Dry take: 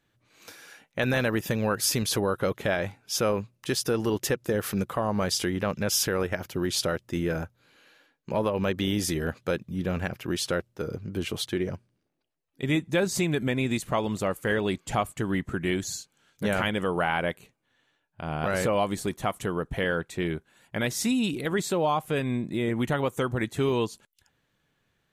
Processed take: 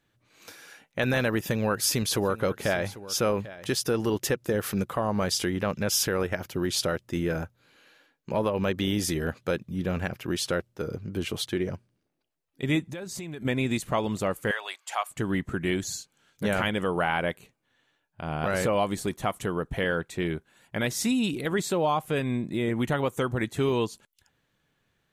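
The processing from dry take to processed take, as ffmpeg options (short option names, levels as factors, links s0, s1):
-filter_complex "[0:a]asettb=1/sr,asplit=3[s0][s1][s2];[s0]atrim=end=1.384[s3];[s1]atrim=start=1.38:end=3.76,asetpts=PTS-STARTPTS,afade=t=in:d=0.004:c=qsin,afade=t=out:st=2.376:d=0.004:c=qsin,aecho=1:1:794:0.15,atrim=end_sample=104958[s4];[s2]atrim=start=3.756[s5];[s3][s4]acrossfade=d=0.004:c1=hsin:c2=qsin[s6];[s6][s5]acrossfade=d=0.004:c1=qsin:c2=hsin,asettb=1/sr,asplit=3[s7][s8][s9];[s7]atrim=end=12.854[s10];[s8]atrim=start=12.85:end=13.45,asetpts=PTS-STARTPTS,afade=t=in:d=0.004:c=qsin,afade=t=out:st=0.596:d=0.004:c=qsin,acompressor=threshold=0.02:ratio=6:attack=3.2:release=140:knee=1:detection=peak[s11];[s9]atrim=start=13.446[s12];[s10][s11]acrossfade=d=0.004:c1=hsin:c2=qsin[s13];[s13][s12]acrossfade=d=0.004:c1=qsin:c2=hsin,asettb=1/sr,asplit=3[s14][s15][s16];[s14]atrim=end=14.514[s17];[s15]atrim=start=14.51:end=15.11,asetpts=PTS-STARTPTS,afade=t=in:d=0.004:c=qsin,afade=t=out:st=0.596:d=0.004:c=qsin,highpass=f=750:w=0.5412,highpass=f=750:w=1.3066[s18];[s16]atrim=start=15.106[s19];[s17][s18]acrossfade=d=0.004:c1=hsin:c2=qsin[s20];[s20][s19]acrossfade=d=0.004:c1=qsin:c2=hsin"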